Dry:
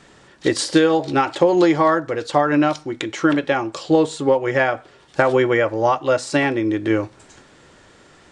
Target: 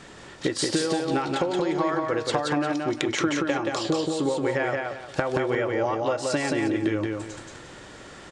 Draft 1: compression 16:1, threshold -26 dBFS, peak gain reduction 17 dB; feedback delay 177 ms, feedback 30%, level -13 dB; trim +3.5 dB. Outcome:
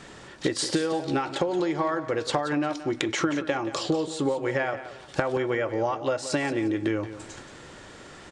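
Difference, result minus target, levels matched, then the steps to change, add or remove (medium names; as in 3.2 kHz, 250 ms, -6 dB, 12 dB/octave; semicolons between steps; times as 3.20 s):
echo-to-direct -10 dB
change: feedback delay 177 ms, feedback 30%, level -3 dB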